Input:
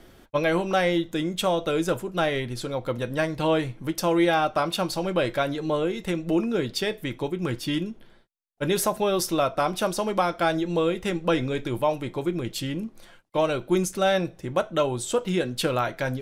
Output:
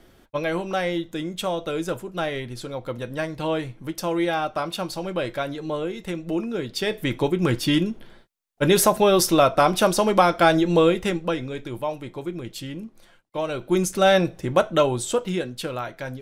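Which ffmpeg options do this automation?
ffmpeg -i in.wav -af "volume=16dB,afade=type=in:start_time=6.71:duration=0.41:silence=0.354813,afade=type=out:start_time=10.85:duration=0.51:silence=0.298538,afade=type=in:start_time=13.45:duration=0.67:silence=0.334965,afade=type=out:start_time=14.67:duration=0.91:silence=0.298538" out.wav

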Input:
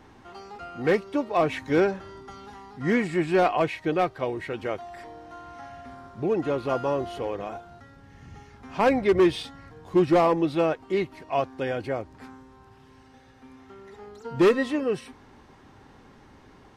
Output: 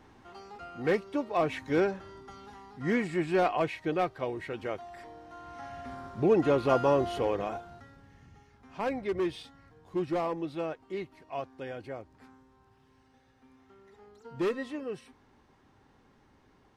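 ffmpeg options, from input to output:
ffmpeg -i in.wav -af "volume=1.5dB,afade=type=in:start_time=5.33:duration=0.61:silence=0.473151,afade=type=out:start_time=7.3:duration=1.03:silence=0.237137" out.wav

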